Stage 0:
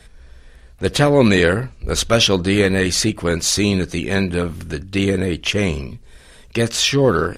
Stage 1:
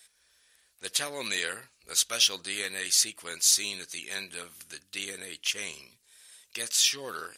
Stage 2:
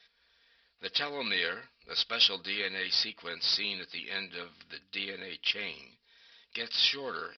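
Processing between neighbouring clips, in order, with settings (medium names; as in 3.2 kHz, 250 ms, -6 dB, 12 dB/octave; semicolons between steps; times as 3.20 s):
differentiator; trim -1.5 dB
comb 4.3 ms, depth 43%; short-mantissa float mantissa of 2-bit; resampled via 11.025 kHz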